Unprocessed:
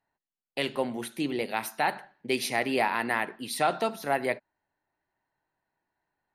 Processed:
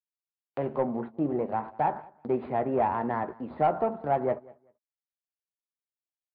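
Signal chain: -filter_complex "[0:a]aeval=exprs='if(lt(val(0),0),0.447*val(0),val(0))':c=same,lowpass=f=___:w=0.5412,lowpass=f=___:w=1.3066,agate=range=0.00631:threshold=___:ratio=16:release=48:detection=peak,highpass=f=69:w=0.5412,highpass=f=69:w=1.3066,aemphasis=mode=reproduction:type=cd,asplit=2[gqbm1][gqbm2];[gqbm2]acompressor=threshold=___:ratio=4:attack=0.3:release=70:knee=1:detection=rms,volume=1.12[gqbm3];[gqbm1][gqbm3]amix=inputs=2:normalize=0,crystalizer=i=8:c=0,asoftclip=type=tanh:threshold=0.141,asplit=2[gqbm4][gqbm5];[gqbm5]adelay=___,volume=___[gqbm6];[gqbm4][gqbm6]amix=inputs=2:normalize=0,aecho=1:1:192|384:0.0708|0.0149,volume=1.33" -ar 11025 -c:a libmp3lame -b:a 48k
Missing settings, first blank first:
1000, 1000, 0.00224, 0.00447, 13, 0.266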